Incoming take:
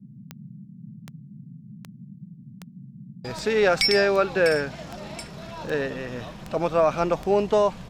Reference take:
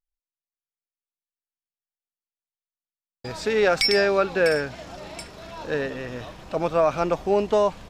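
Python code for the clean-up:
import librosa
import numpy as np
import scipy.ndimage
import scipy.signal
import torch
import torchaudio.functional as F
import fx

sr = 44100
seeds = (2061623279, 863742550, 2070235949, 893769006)

y = fx.fix_declick_ar(x, sr, threshold=10.0)
y = fx.noise_reduce(y, sr, print_start_s=2.25, print_end_s=2.75, reduce_db=30.0)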